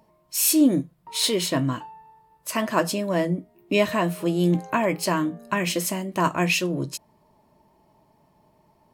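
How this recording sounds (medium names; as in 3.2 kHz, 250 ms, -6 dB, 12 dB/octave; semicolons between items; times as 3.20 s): noise floor -63 dBFS; spectral tilt -4.0 dB/octave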